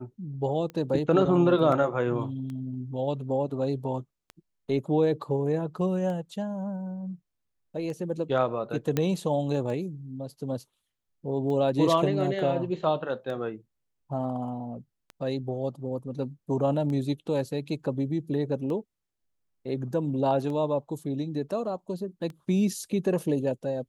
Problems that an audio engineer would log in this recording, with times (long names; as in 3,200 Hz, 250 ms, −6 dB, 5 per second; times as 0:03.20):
scratch tick 33 1/3 rpm −26 dBFS
0:08.97: click −12 dBFS